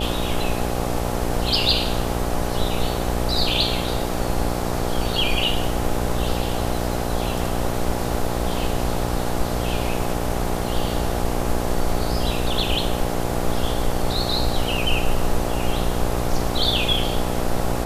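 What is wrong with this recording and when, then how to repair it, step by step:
mains buzz 60 Hz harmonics 14 −26 dBFS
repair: hum removal 60 Hz, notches 14

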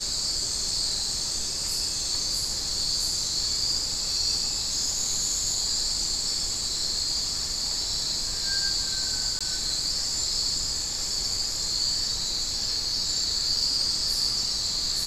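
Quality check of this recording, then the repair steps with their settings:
0:09.39–0:09.41: drop-out 16 ms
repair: repair the gap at 0:09.39, 16 ms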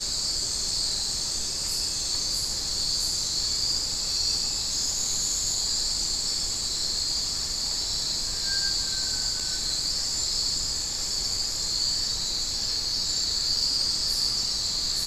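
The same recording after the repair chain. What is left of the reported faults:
none of them is left

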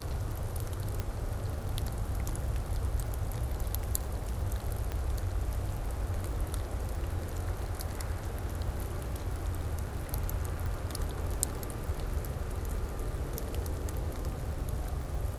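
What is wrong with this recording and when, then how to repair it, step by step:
surface crackle 29 per second −39 dBFS
0:01.00: click −19 dBFS
0:04.92: click −21 dBFS
0:10.66: click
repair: click removal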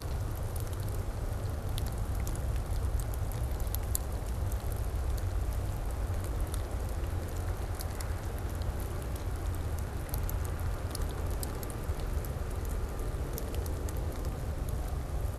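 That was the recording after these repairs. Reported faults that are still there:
0:01.00: click

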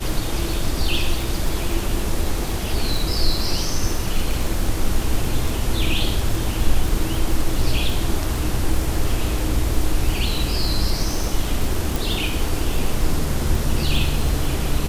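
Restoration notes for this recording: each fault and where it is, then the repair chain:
surface crackle 48 per second −23 dBFS
0:11.96: click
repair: click removal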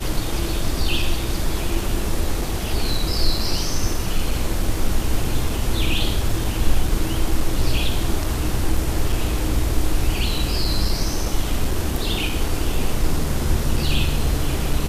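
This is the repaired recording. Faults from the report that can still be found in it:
0:11.96: click

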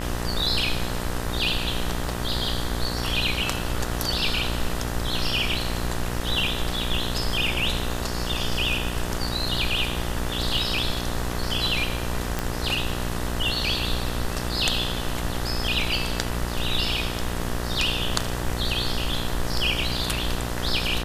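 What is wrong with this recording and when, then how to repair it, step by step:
mains buzz 60 Hz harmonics 33 −30 dBFS
0:12.39: click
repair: click removal
hum removal 60 Hz, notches 33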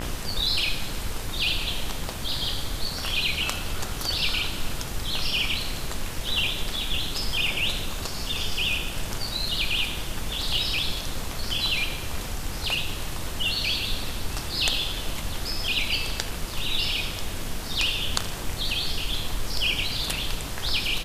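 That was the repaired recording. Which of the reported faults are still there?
none of them is left

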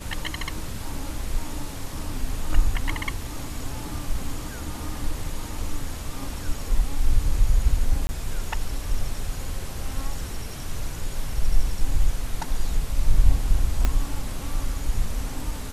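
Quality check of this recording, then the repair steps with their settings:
0:08.07–0:08.09: drop-out 20 ms
0:13.85: click −9 dBFS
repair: click removal
repair the gap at 0:08.07, 20 ms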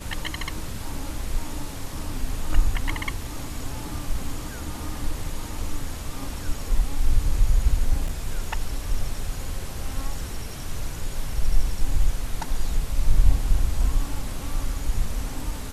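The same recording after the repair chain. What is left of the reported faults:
0:13.85: click

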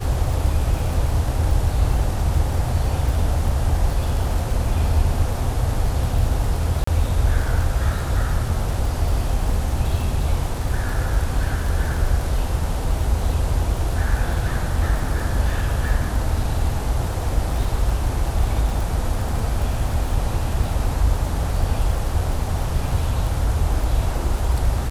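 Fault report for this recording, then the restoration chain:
surface crackle 38 per second −26 dBFS
0:06.84–0:06.87: drop-out 34 ms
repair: click removal
repair the gap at 0:06.84, 34 ms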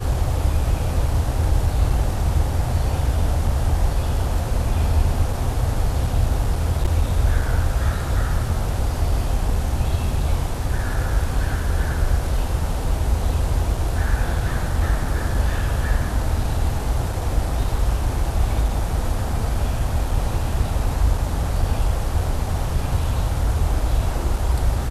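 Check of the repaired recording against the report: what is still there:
none of them is left

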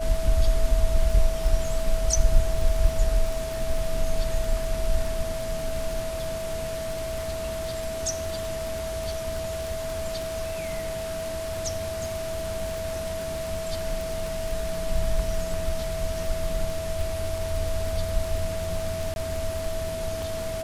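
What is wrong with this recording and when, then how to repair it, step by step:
surface crackle 40 per second −29 dBFS
whistle 650 Hz −30 dBFS
0:19.14–0:19.16: drop-out 21 ms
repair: click removal
notch filter 650 Hz, Q 30
repair the gap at 0:19.14, 21 ms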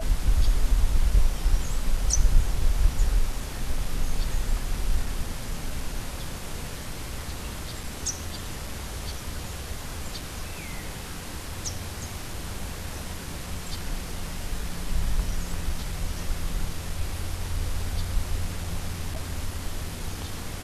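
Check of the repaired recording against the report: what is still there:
none of them is left

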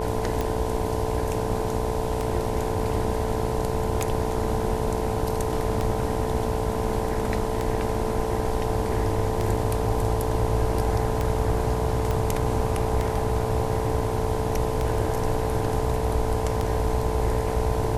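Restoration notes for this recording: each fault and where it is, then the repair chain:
mains buzz 60 Hz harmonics 17 −30 dBFS
scratch tick 33 1/3 rpm −13 dBFS
whistle 440 Hz −29 dBFS
0:12.11: click −14 dBFS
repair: click removal
hum removal 60 Hz, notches 17
notch filter 440 Hz, Q 30

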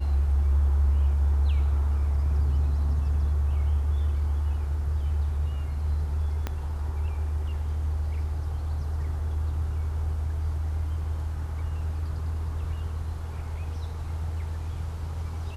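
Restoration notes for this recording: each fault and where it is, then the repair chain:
0:06.47: click −16 dBFS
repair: click removal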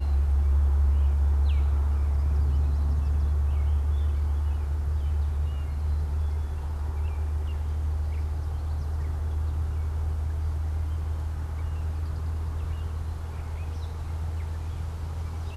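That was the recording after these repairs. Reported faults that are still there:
0:06.47: click

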